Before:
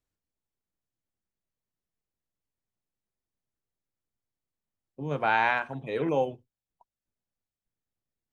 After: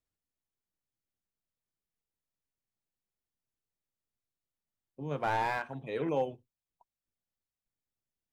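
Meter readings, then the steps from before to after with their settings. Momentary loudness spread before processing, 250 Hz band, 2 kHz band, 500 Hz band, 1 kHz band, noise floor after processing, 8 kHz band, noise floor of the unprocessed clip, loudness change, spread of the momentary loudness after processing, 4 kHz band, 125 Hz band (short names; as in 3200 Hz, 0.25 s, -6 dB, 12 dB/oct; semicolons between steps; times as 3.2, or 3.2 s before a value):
10 LU, -4.5 dB, -9.5 dB, -4.5 dB, -5.5 dB, under -85 dBFS, n/a, under -85 dBFS, -6.0 dB, 8 LU, -7.0 dB, -3.5 dB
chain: slew limiter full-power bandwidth 85 Hz; gain -4.5 dB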